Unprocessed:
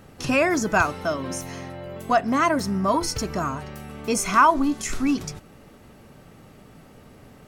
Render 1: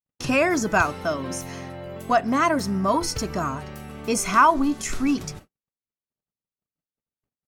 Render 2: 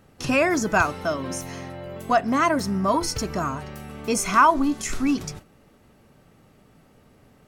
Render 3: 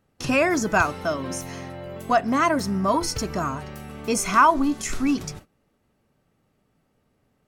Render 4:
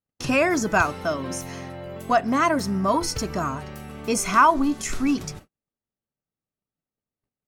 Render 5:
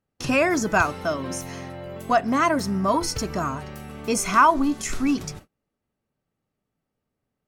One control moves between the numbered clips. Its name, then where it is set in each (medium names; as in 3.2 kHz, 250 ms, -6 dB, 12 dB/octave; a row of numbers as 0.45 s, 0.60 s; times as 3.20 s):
gate, range: -59 dB, -7 dB, -20 dB, -46 dB, -33 dB